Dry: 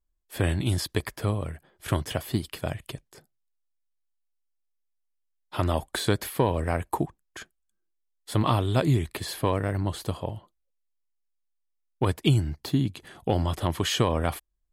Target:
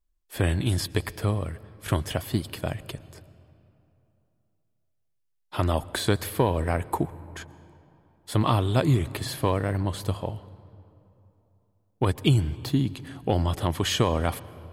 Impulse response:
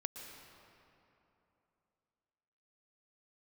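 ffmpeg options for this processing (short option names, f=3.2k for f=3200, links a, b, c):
-filter_complex "[0:a]asplit=2[a][b];[1:a]atrim=start_sample=2205,lowshelf=f=86:g=10.5[c];[b][c]afir=irnorm=-1:irlink=0,volume=-11dB[d];[a][d]amix=inputs=2:normalize=0,volume=-1dB"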